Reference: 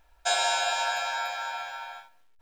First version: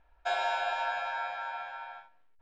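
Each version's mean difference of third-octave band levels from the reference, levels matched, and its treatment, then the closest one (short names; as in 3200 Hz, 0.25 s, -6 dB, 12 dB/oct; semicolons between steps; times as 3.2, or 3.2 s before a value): 5.5 dB: LPF 2300 Hz 12 dB/oct; gain -3 dB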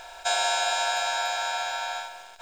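4.0 dB: per-bin compression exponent 0.4; gain -1.5 dB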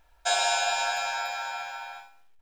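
1.5 dB: feedback echo 60 ms, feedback 43%, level -10.5 dB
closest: third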